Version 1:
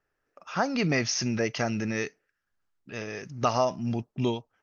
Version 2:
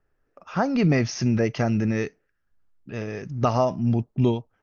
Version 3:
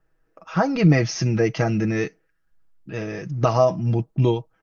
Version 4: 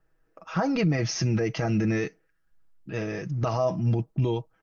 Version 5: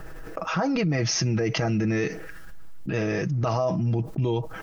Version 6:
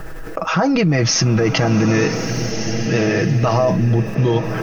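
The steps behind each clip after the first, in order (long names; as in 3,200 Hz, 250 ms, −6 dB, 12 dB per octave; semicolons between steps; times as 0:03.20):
spectral tilt −2.5 dB per octave; level +1.5 dB
comb filter 6.2 ms, depth 65%; level +1.5 dB
brickwall limiter −15 dBFS, peak gain reduction 10.5 dB; level −1.5 dB
envelope flattener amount 70%; level −2 dB
slow-attack reverb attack 1,470 ms, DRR 6 dB; level +8.5 dB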